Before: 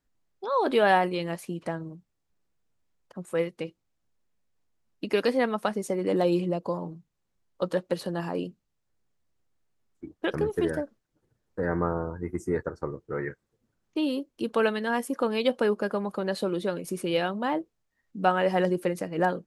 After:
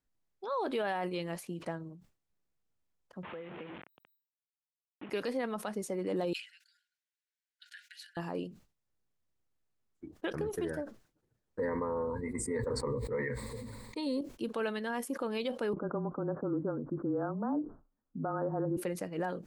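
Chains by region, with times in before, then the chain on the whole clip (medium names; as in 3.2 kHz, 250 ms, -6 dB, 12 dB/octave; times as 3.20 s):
3.23–5.10 s: one-bit delta coder 16 kbps, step -32 dBFS + high-pass 150 Hz + compression 12:1, threshold -33 dBFS
6.33–8.17 s: treble shelf 9.6 kHz -10 dB + compression 1.5:1, threshold -29 dBFS + brick-wall FIR high-pass 1.4 kHz
11.59–14.21 s: rippled EQ curve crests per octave 0.97, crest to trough 16 dB + decay stretcher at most 27 dB/s
15.73–18.77 s: steep low-pass 1.5 kHz 72 dB/octave + peaking EQ 290 Hz +11.5 dB 0.46 oct + frequency shift -25 Hz
whole clip: peak limiter -19 dBFS; decay stretcher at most 150 dB/s; trim -6.5 dB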